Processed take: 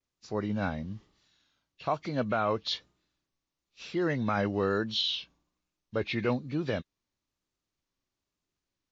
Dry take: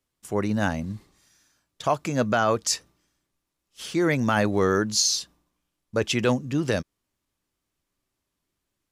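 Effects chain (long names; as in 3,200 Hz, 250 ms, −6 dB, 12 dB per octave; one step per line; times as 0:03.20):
hearing-aid frequency compression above 1,600 Hz 1.5 to 1
pitch vibrato 1.1 Hz 70 cents
level −6.5 dB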